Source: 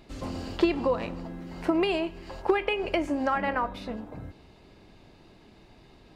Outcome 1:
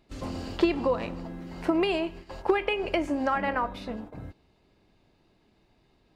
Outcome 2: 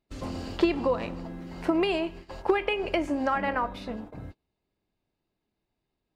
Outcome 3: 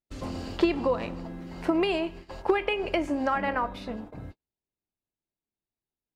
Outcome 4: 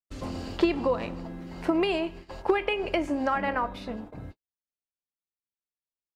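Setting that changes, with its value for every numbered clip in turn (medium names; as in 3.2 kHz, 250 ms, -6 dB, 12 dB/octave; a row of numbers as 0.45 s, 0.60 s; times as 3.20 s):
gate, range: -11 dB, -28 dB, -43 dB, -59 dB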